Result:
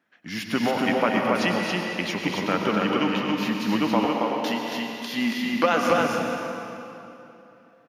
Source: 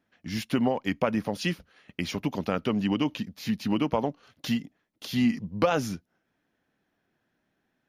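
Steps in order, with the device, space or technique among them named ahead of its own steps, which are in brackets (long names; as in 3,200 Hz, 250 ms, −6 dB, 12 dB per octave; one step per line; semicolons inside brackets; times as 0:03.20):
stadium PA (high-pass filter 170 Hz 12 dB per octave; parametric band 1,600 Hz +7 dB 1.8 octaves; loudspeakers that aren't time-aligned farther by 80 metres −9 dB, 95 metres −3 dB; convolution reverb RT60 3.0 s, pre-delay 93 ms, DRR 2 dB)
0:04.05–0:05.90: high-pass filter 210 Hz 12 dB per octave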